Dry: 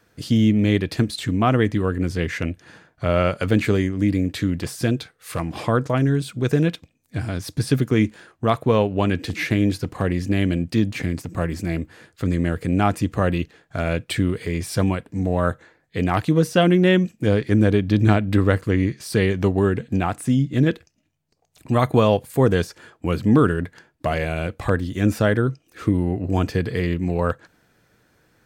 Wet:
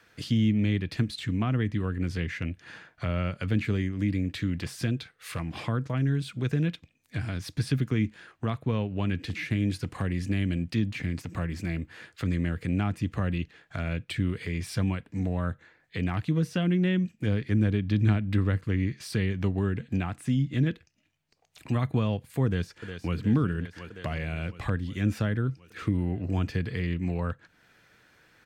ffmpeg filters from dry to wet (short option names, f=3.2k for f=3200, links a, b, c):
-filter_complex "[0:a]asettb=1/sr,asplit=3[a][b][c];[a]atrim=end=9.434[d];[b]atrim=start=9.43:end=10.67,asetpts=PTS-STARTPTS,afade=t=in:d=0.004:c=qsin,afade=t=out:st=1.236:d=0.004:c=qsin,equalizer=f=9.1k:w=1.3:g=6[e];[c]atrim=start=10.666[f];[d][e]acrossfade=d=0.004:c1=hsin:c2=qsin[g];[g][f]acrossfade=d=0.004:c1=qsin:c2=hsin,asplit=2[h][i];[i]afade=t=in:st=22.46:d=0.01,afade=t=out:st=23.17:d=0.01,aecho=0:1:360|720|1080|1440|1800|2160|2520|2880|3240|3600|3960:0.223872|0.167904|0.125928|0.094446|0.0708345|0.0531259|0.0398444|0.0298833|0.0224125|0.0168094|0.012607[j];[h][j]amix=inputs=2:normalize=0,equalizer=f=2.4k:t=o:w=2.5:g=10.5,acrossover=split=250[k][l];[l]acompressor=threshold=-36dB:ratio=2.5[m];[k][m]amix=inputs=2:normalize=0,volume=-5dB"